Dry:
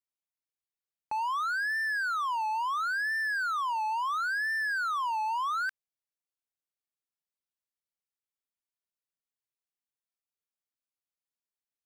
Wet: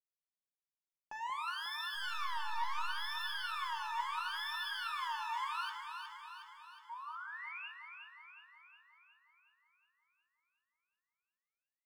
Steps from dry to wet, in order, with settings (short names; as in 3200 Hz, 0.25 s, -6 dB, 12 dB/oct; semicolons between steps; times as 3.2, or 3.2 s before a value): self-modulated delay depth 0.14 ms; 1.94–2.87 elliptic high-pass 220 Hz; sample leveller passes 2; flange 0.54 Hz, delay 3.5 ms, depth 2.2 ms, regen +68%; 6.89–7.69 painted sound rise 900–2900 Hz -40 dBFS; echo with dull and thin repeats by turns 0.182 s, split 1100 Hz, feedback 76%, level -4 dB; on a send at -6 dB: reverb RT60 0.45 s, pre-delay 3 ms; on the sum: gain -7.5 dB